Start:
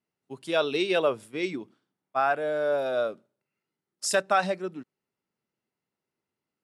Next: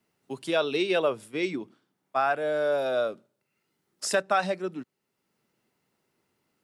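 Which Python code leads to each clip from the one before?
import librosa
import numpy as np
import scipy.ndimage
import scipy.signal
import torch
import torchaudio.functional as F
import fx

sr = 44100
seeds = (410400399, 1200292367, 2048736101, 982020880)

y = fx.band_squash(x, sr, depth_pct=40)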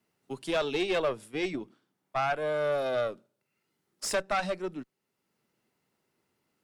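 y = fx.tube_stage(x, sr, drive_db=21.0, bias=0.5)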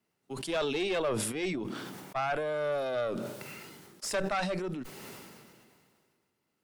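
y = fx.sustainer(x, sr, db_per_s=28.0)
y = y * 10.0 ** (-3.0 / 20.0)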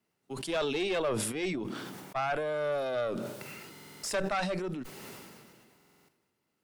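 y = fx.buffer_glitch(x, sr, at_s=(3.71, 5.76), block=2048, repeats=6)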